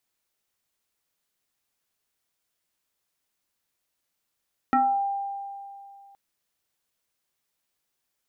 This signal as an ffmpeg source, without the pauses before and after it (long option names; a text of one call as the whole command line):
ffmpeg -f lavfi -i "aevalsrc='0.15*pow(10,-3*t/2.54)*sin(2*PI*795*t+1.5*pow(10,-3*t/0.41)*sin(2*PI*0.68*795*t))':duration=1.42:sample_rate=44100" out.wav